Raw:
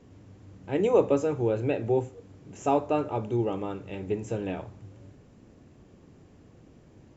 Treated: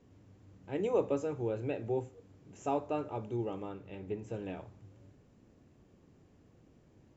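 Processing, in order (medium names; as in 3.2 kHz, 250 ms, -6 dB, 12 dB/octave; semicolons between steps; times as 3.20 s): 3.69–4.34 s: distance through air 78 m; trim -8.5 dB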